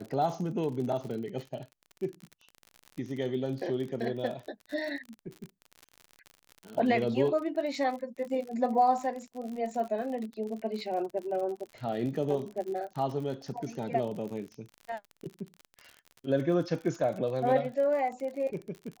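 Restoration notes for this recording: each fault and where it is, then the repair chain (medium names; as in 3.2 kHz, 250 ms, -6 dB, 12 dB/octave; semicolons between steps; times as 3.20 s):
crackle 53 per s -37 dBFS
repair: de-click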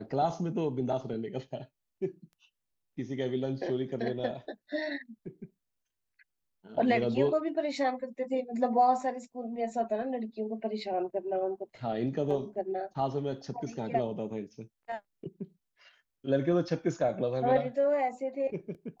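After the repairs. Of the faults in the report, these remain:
nothing left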